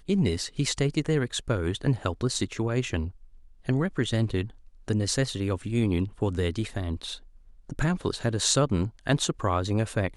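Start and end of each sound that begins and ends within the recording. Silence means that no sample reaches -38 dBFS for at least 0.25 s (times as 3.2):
3.66–4.5
4.88–7.18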